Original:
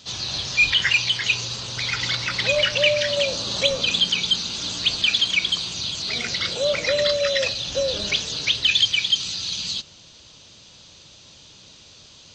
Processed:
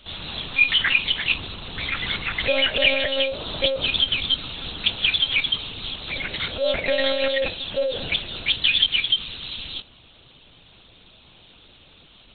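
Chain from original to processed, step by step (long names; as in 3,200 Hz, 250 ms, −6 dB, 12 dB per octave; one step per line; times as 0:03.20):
one-pitch LPC vocoder at 8 kHz 270 Hz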